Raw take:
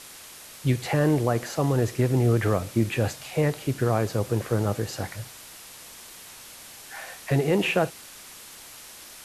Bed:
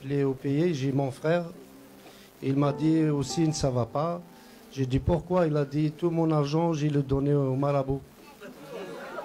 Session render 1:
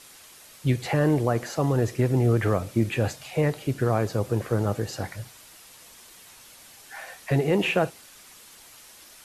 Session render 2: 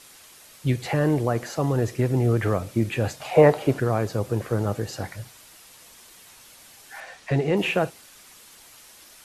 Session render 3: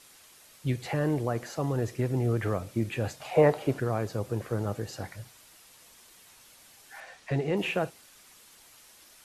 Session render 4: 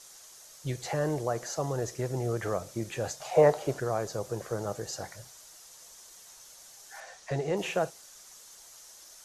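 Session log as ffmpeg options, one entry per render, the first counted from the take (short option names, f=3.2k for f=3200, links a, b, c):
-af "afftdn=nr=6:nf=-45"
-filter_complex "[0:a]asettb=1/sr,asplit=3[a][b][c];[a]atrim=end=3.204[d];[b]atrim=start=3.2:end=3.8,asetpts=PTS-STARTPTS,afade=t=in:d=0.004:c=qsin,afade=t=out:st=0.596:d=0.004:c=qsin,equalizer=f=750:t=o:w=2.3:g=15[e];[c]atrim=start=3.796[f];[d][e]acrossfade=d=0.004:c1=hsin:c2=qsin[g];[g][f]acrossfade=d=0.004:c1=qsin:c2=hsin,asettb=1/sr,asplit=3[h][i][j];[h]atrim=end=7.004[k];[i]atrim=start=7:end=7.57,asetpts=PTS-STARTPTS,afade=t=in:d=0.004:c=qsin,afade=t=out:st=0.566:d=0.004:c=qsin,lowpass=6.7k[l];[j]atrim=start=7.566[m];[k][l]acrossfade=d=0.004:c1=hsin:c2=qsin[n];[n][m]acrossfade=d=0.004:c1=qsin:c2=hsin"
-af "volume=-6dB"
-af "equalizer=f=100:t=o:w=0.67:g=-8,equalizer=f=250:t=o:w=0.67:g=-9,equalizer=f=630:t=o:w=0.67:g=3,equalizer=f=2.5k:t=o:w=0.67:g=-6,equalizer=f=6.3k:t=o:w=0.67:g=10"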